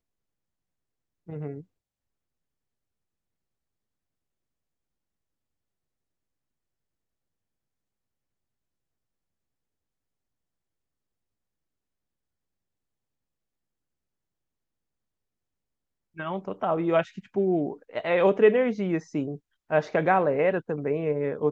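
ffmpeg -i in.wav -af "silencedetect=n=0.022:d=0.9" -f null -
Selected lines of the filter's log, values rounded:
silence_start: 0.00
silence_end: 1.29 | silence_duration: 1.29
silence_start: 1.60
silence_end: 16.18 | silence_duration: 14.58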